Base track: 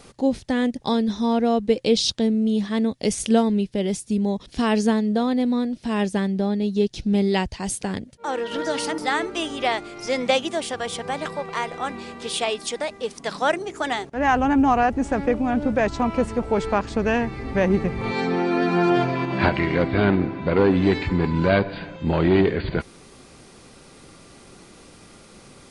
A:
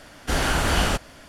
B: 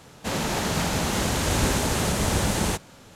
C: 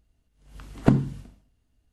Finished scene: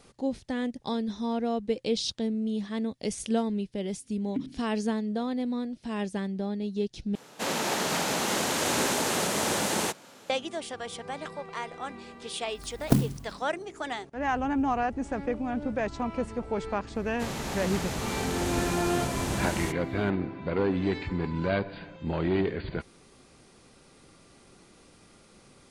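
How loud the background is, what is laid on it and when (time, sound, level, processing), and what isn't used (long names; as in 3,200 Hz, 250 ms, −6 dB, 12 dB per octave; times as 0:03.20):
base track −9 dB
0:03.48: mix in C −6 dB + formant filter i
0:07.15: overwrite with B −1 dB + high-pass filter 260 Hz
0:12.04: mix in C −3.5 dB + converter with an unsteady clock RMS 0.094 ms
0:16.95: mix in B −8.5 dB
not used: A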